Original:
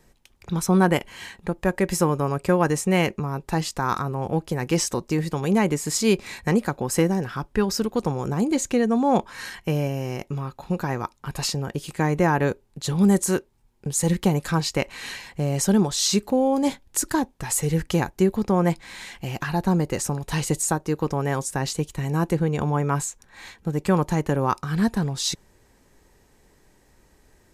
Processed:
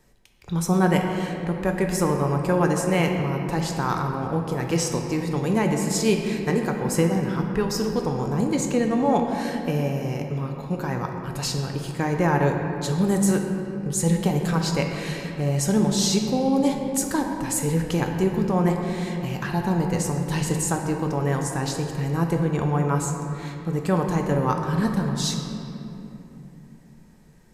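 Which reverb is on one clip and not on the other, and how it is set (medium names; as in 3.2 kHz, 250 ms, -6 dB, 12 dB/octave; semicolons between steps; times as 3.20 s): simulated room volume 150 m³, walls hard, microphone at 0.34 m; trim -2.5 dB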